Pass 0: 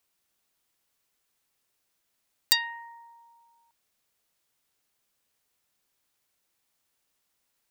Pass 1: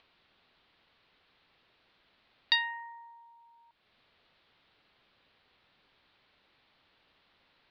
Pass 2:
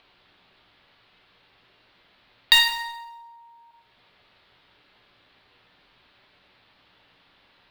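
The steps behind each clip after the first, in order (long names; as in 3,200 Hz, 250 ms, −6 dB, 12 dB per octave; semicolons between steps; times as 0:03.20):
Butterworth low-pass 4,200 Hz 48 dB per octave; upward compression, threshold −56 dBFS
in parallel at −4.5 dB: bit reduction 4 bits; on the sum: dense smooth reverb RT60 0.9 s, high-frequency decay 0.85×, pre-delay 0 ms, DRR 0 dB; level +6 dB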